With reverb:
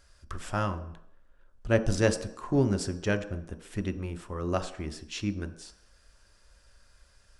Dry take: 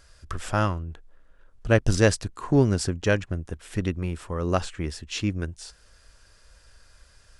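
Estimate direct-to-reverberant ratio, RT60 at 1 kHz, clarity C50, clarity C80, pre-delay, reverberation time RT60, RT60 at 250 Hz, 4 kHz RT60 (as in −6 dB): 8.0 dB, 0.75 s, 13.0 dB, 15.5 dB, 3 ms, 0.70 s, 0.55 s, 0.70 s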